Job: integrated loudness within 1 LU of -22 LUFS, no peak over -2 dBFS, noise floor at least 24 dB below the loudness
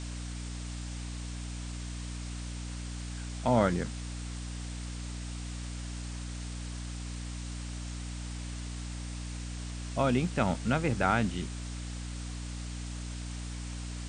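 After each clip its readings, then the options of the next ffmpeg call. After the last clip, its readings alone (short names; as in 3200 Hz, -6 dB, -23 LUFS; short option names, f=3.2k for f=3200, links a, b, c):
hum 60 Hz; harmonics up to 300 Hz; hum level -36 dBFS; noise floor -39 dBFS; noise floor target -59 dBFS; loudness -35.0 LUFS; peak -11.0 dBFS; loudness target -22.0 LUFS
-> -af "bandreject=f=60:t=h:w=4,bandreject=f=120:t=h:w=4,bandreject=f=180:t=h:w=4,bandreject=f=240:t=h:w=4,bandreject=f=300:t=h:w=4"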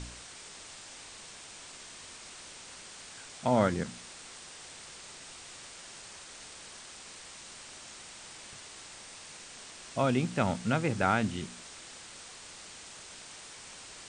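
hum none; noise floor -49 dBFS; noise floor target -61 dBFS
-> -af "afftdn=nr=12:nf=-49"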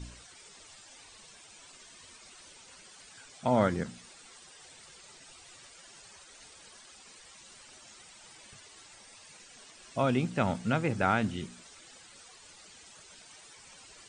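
noise floor -54 dBFS; loudness -30.0 LUFS; peak -11.0 dBFS; loudness target -22.0 LUFS
-> -af "volume=8dB"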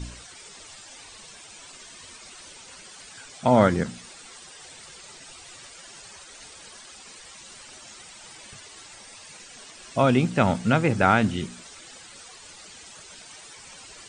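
loudness -22.0 LUFS; peak -3.0 dBFS; noise floor -46 dBFS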